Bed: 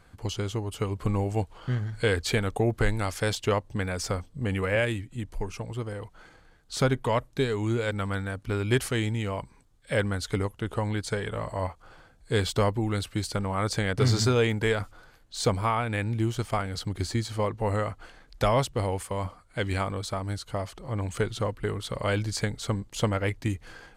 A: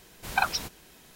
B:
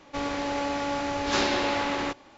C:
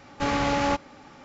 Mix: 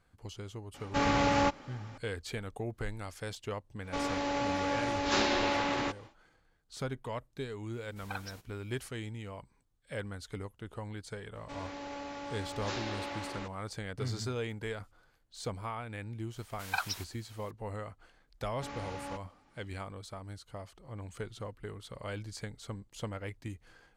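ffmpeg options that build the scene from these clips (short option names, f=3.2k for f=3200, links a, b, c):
-filter_complex "[3:a]asplit=2[a][b];[2:a]asplit=2[c][d];[1:a]asplit=2[e][f];[0:a]volume=-13dB[g];[f]highpass=860[h];[a]atrim=end=1.24,asetpts=PTS-STARTPTS,volume=-3dB,afade=t=in:d=0.004:c=hsin,afade=t=out:st=1.236:d=0.004:c=hsin,adelay=740[i];[c]atrim=end=2.37,asetpts=PTS-STARTPTS,volume=-3.5dB,afade=t=in:d=0.1,afade=t=out:st=2.27:d=0.1,adelay=3790[j];[e]atrim=end=1.15,asetpts=PTS-STARTPTS,volume=-17dB,afade=t=in:d=0.004:c=hsin,afade=t=out:st=1.146:d=0.004:c=hsin,adelay=7730[k];[d]atrim=end=2.37,asetpts=PTS-STARTPTS,volume=-13dB,afade=t=in:d=0.004:c=hsin,afade=t=out:st=2.366:d=0.004:c=hsin,adelay=11350[l];[h]atrim=end=1.15,asetpts=PTS-STARTPTS,volume=-6.5dB,afade=t=in:d=0.004:c=hsin,afade=t=out:st=1.146:d=0.004:c=hsin,adelay=721476S[m];[b]atrim=end=1.24,asetpts=PTS-STARTPTS,volume=-18dB,afade=t=in:d=0.004:c=hsin,afade=t=out:st=1.236:d=0.004:c=hsin,adelay=18410[n];[g][i][j][k][l][m][n]amix=inputs=7:normalize=0"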